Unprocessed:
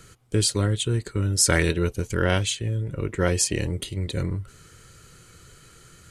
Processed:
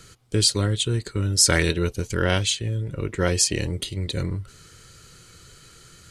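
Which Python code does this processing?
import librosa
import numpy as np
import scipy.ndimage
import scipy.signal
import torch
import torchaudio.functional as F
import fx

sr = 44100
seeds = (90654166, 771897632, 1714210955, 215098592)

y = fx.peak_eq(x, sr, hz=4500.0, db=6.0, octaves=1.1)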